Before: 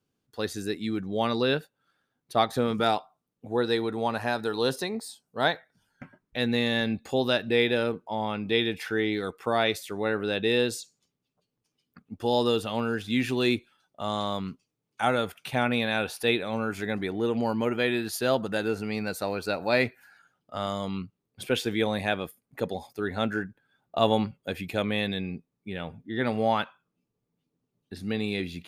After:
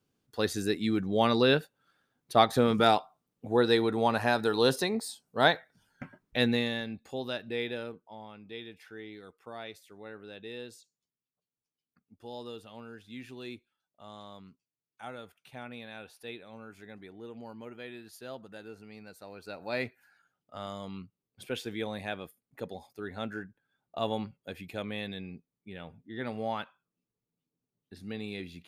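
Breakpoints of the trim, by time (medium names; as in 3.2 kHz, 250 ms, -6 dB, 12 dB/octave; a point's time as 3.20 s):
6.42 s +1.5 dB
6.86 s -10.5 dB
7.70 s -10.5 dB
8.32 s -18 dB
19.22 s -18 dB
19.79 s -9 dB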